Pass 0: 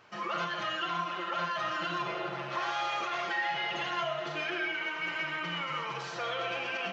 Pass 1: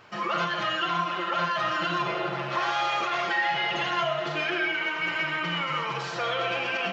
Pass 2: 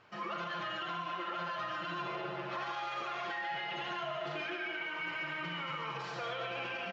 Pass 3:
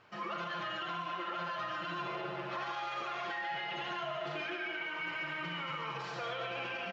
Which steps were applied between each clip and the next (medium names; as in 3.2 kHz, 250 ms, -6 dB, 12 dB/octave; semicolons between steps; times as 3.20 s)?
bass shelf 120 Hz +5 dB; band-stop 6.1 kHz, Q 21; trim +6 dB
delay 142 ms -6.5 dB; peak limiter -20.5 dBFS, peak gain reduction 6 dB; distance through air 59 m; trim -9 dB
rattle on loud lows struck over -49 dBFS, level -50 dBFS